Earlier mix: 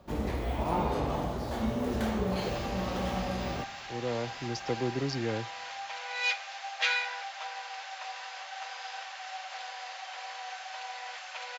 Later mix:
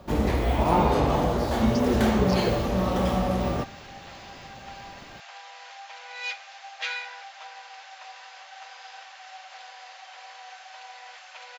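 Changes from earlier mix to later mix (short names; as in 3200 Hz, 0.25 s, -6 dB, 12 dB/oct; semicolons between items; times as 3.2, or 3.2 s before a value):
speech: entry -2.80 s; first sound +8.5 dB; second sound -3.5 dB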